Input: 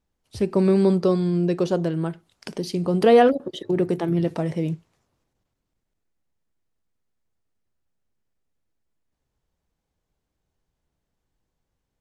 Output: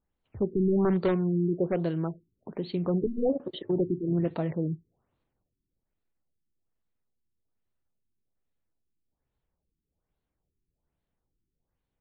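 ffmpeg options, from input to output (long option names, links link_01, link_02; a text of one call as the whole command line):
ffmpeg -i in.wav -af "aeval=exprs='0.211*(abs(mod(val(0)/0.211+3,4)-2)-1)':channel_layout=same,afftfilt=real='re*lt(b*sr/1024,390*pow(4600/390,0.5+0.5*sin(2*PI*1.2*pts/sr)))':imag='im*lt(b*sr/1024,390*pow(4600/390,0.5+0.5*sin(2*PI*1.2*pts/sr)))':win_size=1024:overlap=0.75,volume=-4.5dB" out.wav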